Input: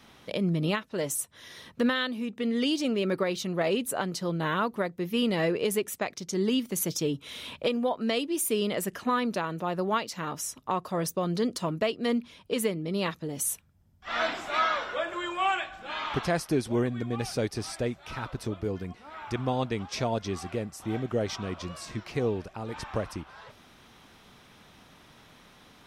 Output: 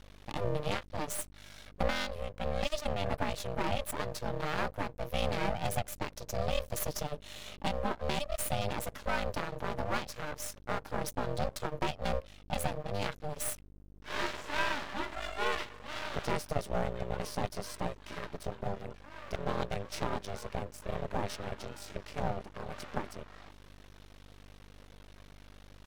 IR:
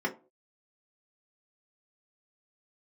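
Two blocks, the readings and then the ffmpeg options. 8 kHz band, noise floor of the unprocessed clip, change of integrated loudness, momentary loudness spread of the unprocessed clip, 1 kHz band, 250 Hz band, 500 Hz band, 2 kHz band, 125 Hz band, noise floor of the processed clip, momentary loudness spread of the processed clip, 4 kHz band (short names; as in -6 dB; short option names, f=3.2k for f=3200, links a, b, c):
-7.0 dB, -56 dBFS, -6.5 dB, 9 LU, -4.0 dB, -11.5 dB, -6.5 dB, -4.5 dB, -4.5 dB, -54 dBFS, 10 LU, -6.0 dB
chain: -af "aeval=exprs='val(0)*sin(2*PI*300*n/s)':c=same,aeval=exprs='val(0)+0.00282*(sin(2*PI*50*n/s)+sin(2*PI*2*50*n/s)/2+sin(2*PI*3*50*n/s)/3+sin(2*PI*4*50*n/s)/4+sin(2*PI*5*50*n/s)/5)':c=same,aeval=exprs='max(val(0),0)':c=same,volume=1dB"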